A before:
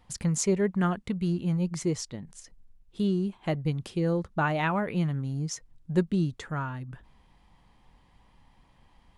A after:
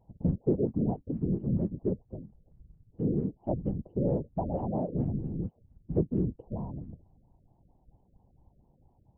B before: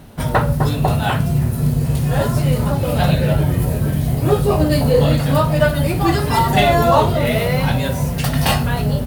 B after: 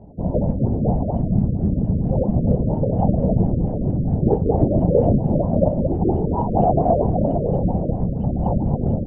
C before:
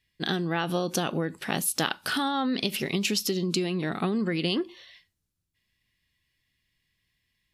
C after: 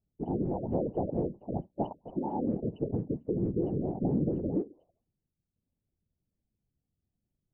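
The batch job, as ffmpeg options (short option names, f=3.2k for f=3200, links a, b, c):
-af "asuperstop=centerf=1800:order=12:qfactor=0.6,afftfilt=real='hypot(re,im)*cos(2*PI*random(0))':imag='hypot(re,im)*sin(2*PI*random(1))':win_size=512:overlap=0.75,afftfilt=real='re*lt(b*sr/1024,590*pow(3100/590,0.5+0.5*sin(2*PI*4.4*pts/sr)))':imag='im*lt(b*sr/1024,590*pow(3100/590,0.5+0.5*sin(2*PI*4.4*pts/sr)))':win_size=1024:overlap=0.75,volume=4dB"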